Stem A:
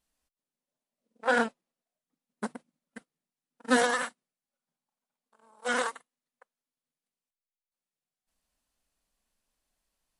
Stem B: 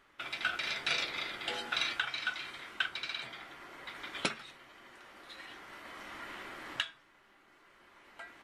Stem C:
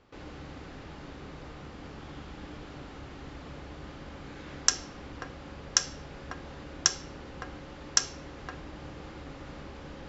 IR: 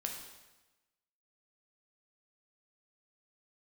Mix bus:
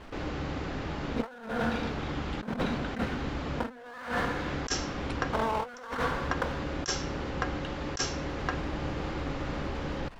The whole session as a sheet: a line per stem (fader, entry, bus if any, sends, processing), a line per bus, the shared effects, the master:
+1.0 dB, 0.00 s, send -5.5 dB, low-pass 2.1 kHz 12 dB/octave; gate with hold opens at -55 dBFS; power-law waveshaper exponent 0.5
-18.0 dB, 0.85 s, no send, none
+2.5 dB, 0.00 s, no send, none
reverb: on, RT60 1.1 s, pre-delay 5 ms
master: treble shelf 5.9 kHz -7.5 dB; compressor with a negative ratio -34 dBFS, ratio -1

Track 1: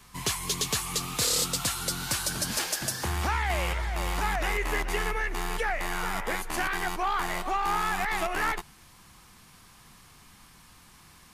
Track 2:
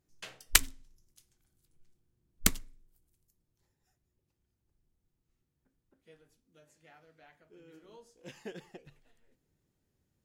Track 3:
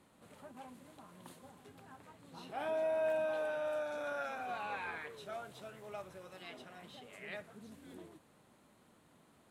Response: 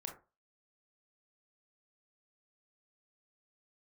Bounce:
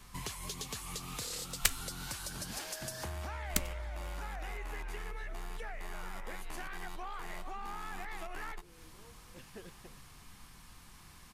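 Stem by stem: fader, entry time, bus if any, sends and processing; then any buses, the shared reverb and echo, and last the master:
-3.0 dB, 0.00 s, no send, bass shelf 60 Hz +10 dB; compression 12:1, threshold -35 dBFS, peak gain reduction 14 dB
-6.5 dB, 1.10 s, no send, none
-7.0 dB, 0.00 s, no send, compression, threshold -43 dBFS, peak gain reduction 11.5 dB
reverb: none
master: none

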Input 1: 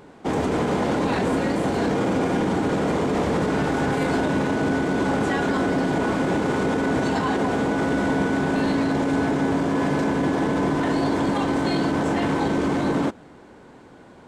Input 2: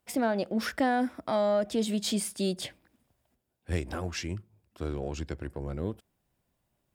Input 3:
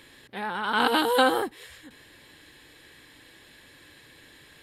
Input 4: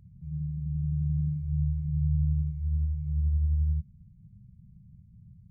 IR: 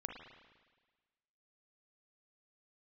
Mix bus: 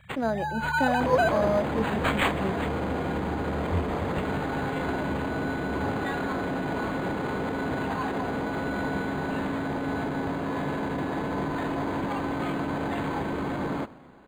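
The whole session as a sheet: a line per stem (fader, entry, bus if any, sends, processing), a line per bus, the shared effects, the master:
-4.5 dB, 0.75 s, send -10 dB, peaking EQ 300 Hz -6 dB 2.3 oct
-4.0 dB, 0.00 s, send -16 dB, treble shelf 9.1 kHz +7.5 dB; three bands expanded up and down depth 100%
-1.5 dB, 0.00 s, no send, formants replaced by sine waves; low-pass that closes with the level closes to 2.6 kHz, closed at -22 dBFS
-3.0 dB, 0.00 s, no send, compression, threshold -33 dBFS, peak gain reduction 10.5 dB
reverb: on, RT60 1.4 s, pre-delay 36 ms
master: treble shelf 9.4 kHz +6.5 dB; decimation joined by straight lines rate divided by 8×

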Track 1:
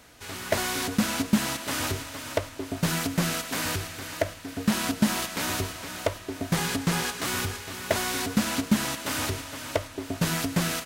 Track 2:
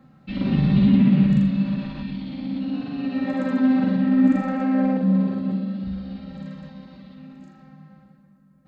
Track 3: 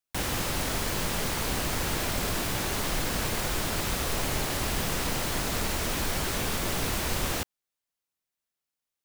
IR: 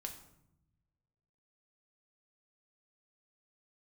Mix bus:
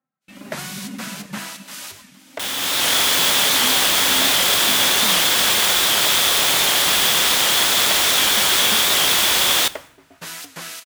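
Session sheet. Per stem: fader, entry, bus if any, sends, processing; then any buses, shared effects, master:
-1.5 dB, 0.00 s, no send, three bands expanded up and down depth 100%
+0.5 dB, 0.00 s, no send, reverb removal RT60 1.7 s; Gaussian low-pass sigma 3 samples
+3.0 dB, 2.25 s, send -5.5 dB, peaking EQ 3.4 kHz +10.5 dB 0.23 oct; level rider gain up to 10 dB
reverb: on, RT60 0.80 s, pre-delay 5 ms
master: high-pass 1.3 kHz 6 dB/octave; gate with hold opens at -41 dBFS; warped record 78 rpm, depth 100 cents

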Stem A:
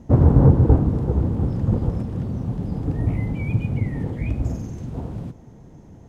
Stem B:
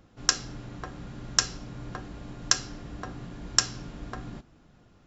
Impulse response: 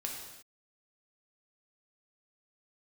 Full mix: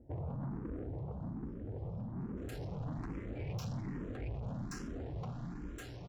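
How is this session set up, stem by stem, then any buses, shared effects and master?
1.94 s -9.5 dB -> 2.25 s -2.5 dB, 0.00 s, no send, level-controlled noise filter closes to 1 kHz, open at -13 dBFS; peaking EQ 78 Hz -5 dB 0.48 oct; peak limiter -12.5 dBFS, peak gain reduction 10.5 dB
-0.5 dB, 2.20 s, no send, level rider gain up to 4 dB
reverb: none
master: valve stage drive 35 dB, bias 0.35; treble shelf 2.1 kHz -10 dB; barber-pole phaser +1.2 Hz

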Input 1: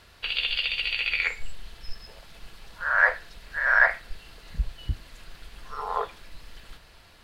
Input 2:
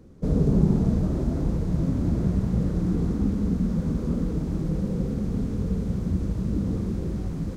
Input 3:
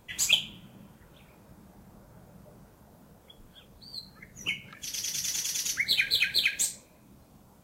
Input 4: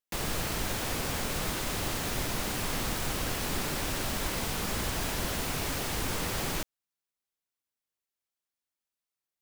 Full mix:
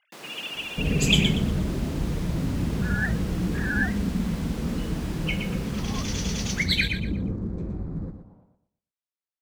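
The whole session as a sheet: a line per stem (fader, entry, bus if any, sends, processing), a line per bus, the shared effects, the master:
-14.0 dB, 0.00 s, no send, no echo send, formants replaced by sine waves; peaking EQ 2.7 kHz +9.5 dB 1.1 oct
-3.0 dB, 0.55 s, no send, echo send -9.5 dB, local Wiener filter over 15 samples
+2.0 dB, 0.80 s, muted 6.88–7.58 s, no send, echo send -6.5 dB, level-controlled noise filter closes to 700 Hz, open at -24 dBFS
-8.0 dB, 0.00 s, no send, echo send -5 dB, high-pass 180 Hz 24 dB/octave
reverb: none
echo: feedback delay 119 ms, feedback 29%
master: treble shelf 8.4 kHz -9 dB

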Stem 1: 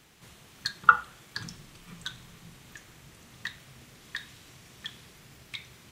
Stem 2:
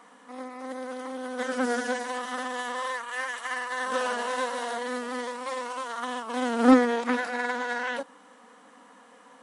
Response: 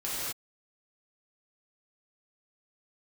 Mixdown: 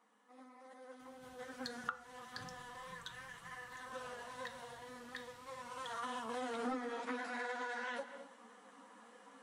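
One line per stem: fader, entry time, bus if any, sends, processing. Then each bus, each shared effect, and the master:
-12.0 dB, 1.00 s, no send, none
5.47 s -16.5 dB -> 6.01 s -4 dB, 0.00 s, send -18.5 dB, three-phase chorus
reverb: on, pre-delay 3 ms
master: compression 4:1, threshold -39 dBFS, peak gain reduction 15 dB

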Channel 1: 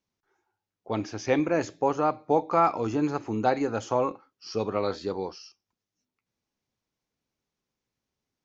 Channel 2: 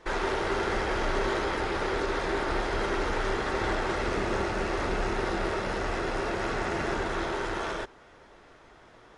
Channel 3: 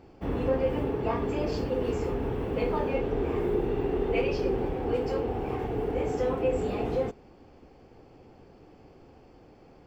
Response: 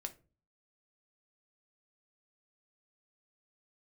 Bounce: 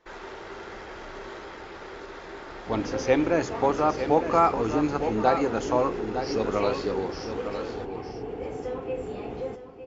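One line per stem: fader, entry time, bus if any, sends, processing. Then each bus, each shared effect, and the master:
+1.5 dB, 1.80 s, no send, echo send -9 dB, none
-11.0 dB, 0.00 s, no send, no echo send, none
-5.0 dB, 2.45 s, no send, echo send -11.5 dB, none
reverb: none
echo: delay 907 ms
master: brick-wall FIR low-pass 7.6 kHz; bass shelf 94 Hz -6.5 dB

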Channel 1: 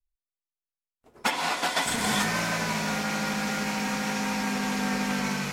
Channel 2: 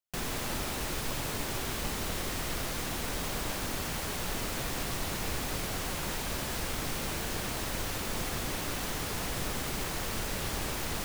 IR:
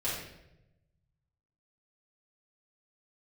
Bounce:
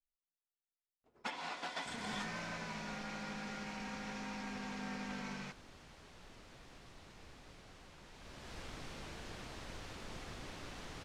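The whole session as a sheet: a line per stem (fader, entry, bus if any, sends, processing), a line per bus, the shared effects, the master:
-15.5 dB, 0.00 s, no send, none
8.07 s -22 dB -> 8.58 s -13 dB, 1.95 s, no send, none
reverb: none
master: low-pass 5.6 kHz 12 dB/octave

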